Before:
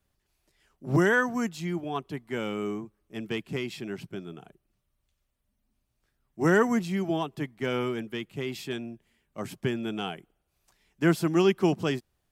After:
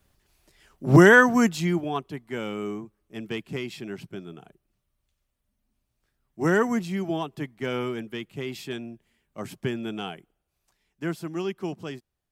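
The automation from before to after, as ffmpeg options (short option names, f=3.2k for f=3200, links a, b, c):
-af "volume=9dB,afade=t=out:st=1.5:d=0.59:silence=0.354813,afade=t=out:st=9.87:d=1.29:silence=0.398107"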